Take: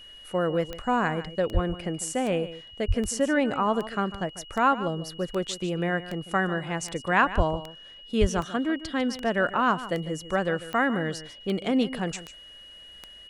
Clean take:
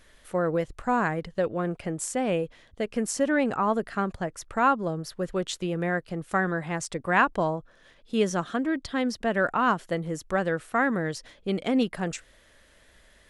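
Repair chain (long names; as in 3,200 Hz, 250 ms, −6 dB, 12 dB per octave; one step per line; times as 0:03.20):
click removal
notch filter 2,900 Hz, Q 30
high-pass at the plosives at 0:01.53/0:02.87/0:07.36/0:08.20
echo removal 148 ms −14.5 dB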